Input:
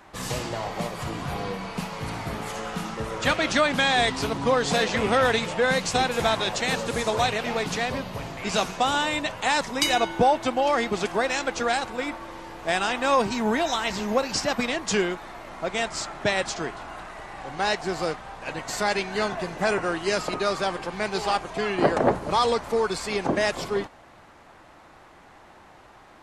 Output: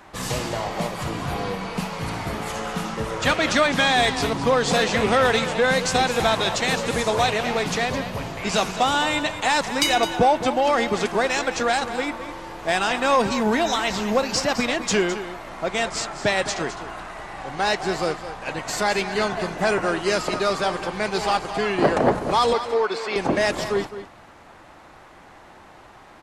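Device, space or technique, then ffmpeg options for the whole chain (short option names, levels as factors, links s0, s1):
parallel distortion: -filter_complex "[0:a]asettb=1/sr,asplit=3[s0][s1][s2];[s0]atrim=end=22.534[s3];[s1]atrim=start=22.53:end=23.16,asetpts=PTS-STARTPTS,afade=t=in:d=0.004:c=qsin,afade=t=out:st=0.626:d=0.004:c=qsin,acrossover=split=260 4800:gain=0.0708 1 0.141[s4][s5][s6];[s4][s5][s6]amix=inputs=3:normalize=0[s7];[s2]atrim=start=23.156[s8];[s3][s7]acrossfade=d=0.004:c1=hsin:c2=qsin[s9];[s9][s8]acrossfade=d=0.004:c1=qsin:c2=hsin,asplit=2[s10][s11];[s11]asoftclip=type=hard:threshold=0.0944,volume=0.473[s12];[s10][s12]amix=inputs=2:normalize=0,aecho=1:1:211:0.251"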